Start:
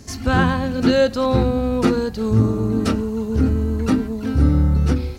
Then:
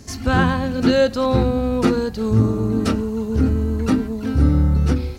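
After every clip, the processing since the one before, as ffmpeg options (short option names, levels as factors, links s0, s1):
-af anull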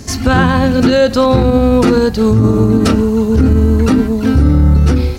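-af "alimiter=level_in=3.98:limit=0.891:release=50:level=0:latency=1,volume=0.891"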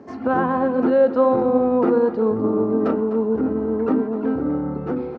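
-af "asuperpass=centerf=570:order=4:qfactor=0.65,aecho=1:1:252:0.237,volume=0.596"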